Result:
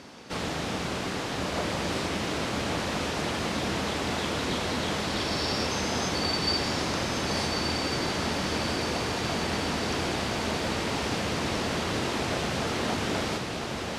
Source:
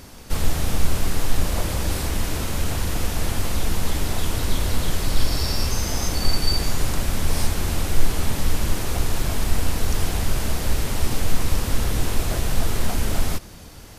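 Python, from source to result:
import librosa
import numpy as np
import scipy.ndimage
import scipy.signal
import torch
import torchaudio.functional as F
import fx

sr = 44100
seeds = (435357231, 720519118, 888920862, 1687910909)

p1 = fx.bandpass_edges(x, sr, low_hz=190.0, high_hz=4800.0)
y = p1 + fx.echo_diffused(p1, sr, ms=1287, feedback_pct=61, wet_db=-4.0, dry=0)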